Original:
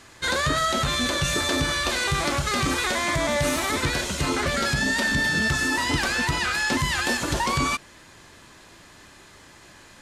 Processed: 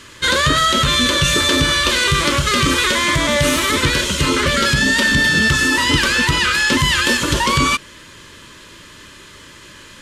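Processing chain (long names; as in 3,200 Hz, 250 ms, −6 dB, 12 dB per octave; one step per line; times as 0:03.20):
Butterworth band-reject 750 Hz, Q 2.5
parametric band 3,100 Hz +6.5 dB 0.36 octaves
level +8 dB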